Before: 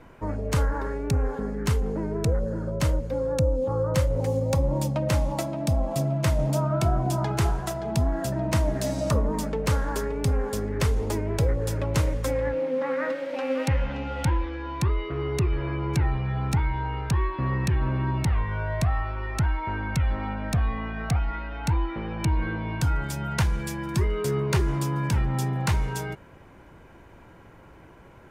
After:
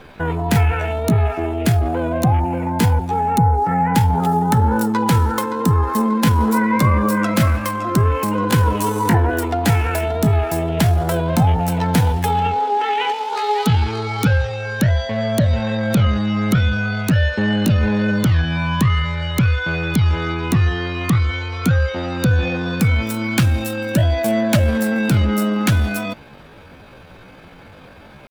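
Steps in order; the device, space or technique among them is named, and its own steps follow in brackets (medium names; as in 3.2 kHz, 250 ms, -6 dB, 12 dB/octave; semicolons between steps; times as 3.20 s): chipmunk voice (pitch shift +8 st); trim +8 dB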